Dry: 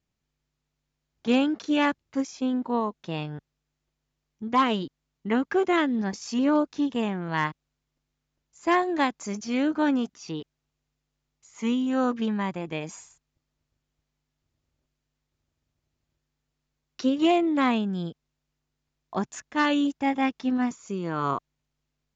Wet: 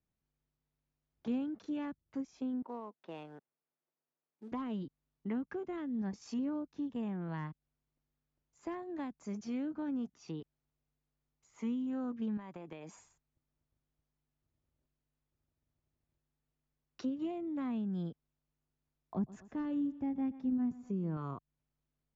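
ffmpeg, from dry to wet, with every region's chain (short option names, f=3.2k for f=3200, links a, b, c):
-filter_complex "[0:a]asettb=1/sr,asplit=3[a][b][c];[a]atrim=end=2.624[d];[b]atrim=start=2.62:end=4.52,asetpts=PTS-STARTPTS,afade=t=in:d=0.004:c=qsin,afade=t=out:st=1.896:d=0.004:c=qsin,adynamicsmooth=sensitivity=5.5:basefreq=3k,acrusher=bits=8:mode=log:mix=0:aa=0.000001,highpass=390,lowpass=6.4k[e];[c]atrim=start=4.516[f];[d][e]acrossfade=d=0.004:c1=hsin:c2=qsin[g];[g][f]acrossfade=d=0.004:c1=qsin:c2=hsin,asettb=1/sr,asplit=3[h][i][j];[h]atrim=end=12.374[k];[i]atrim=start=12.37:end=12.93,asetpts=PTS-STARTPTS,afade=t=in:d=0.004:c=qsin,afade=t=out:st=0.556:d=0.004:c=qsin,highpass=f=240:p=1,acompressor=threshold=-34dB:ratio=10:attack=3.2:release=140:knee=1:detection=peak[l];[j]atrim=start=12.926[m];[k][l]acrossfade=d=0.004:c1=hsin:c2=qsin[n];[n][m]acrossfade=d=0.004:c1=qsin:c2=hsin,asettb=1/sr,asplit=3[o][p][q];[o]atrim=end=19.144[r];[p]atrim=start=19.14:end=21.17,asetpts=PTS-STARTPTS,afade=t=in:d=0.004:c=qsin,afade=t=out:st=2.026:d=0.004:c=qsin,tiltshelf=f=660:g=6,aecho=1:1:121|242|363:0.106|0.0403|0.0153,atrim=end_sample=89523[s];[q]atrim=start=21.166[t];[r][s]acrossfade=d=0.004:c1=hsin:c2=qsin[u];[u][t]acrossfade=d=0.004:c1=qsin:c2=hsin,highshelf=f=2.2k:g=-11,acrossover=split=220[v][w];[w]acompressor=threshold=-37dB:ratio=6[x];[v][x]amix=inputs=2:normalize=0,volume=-5.5dB"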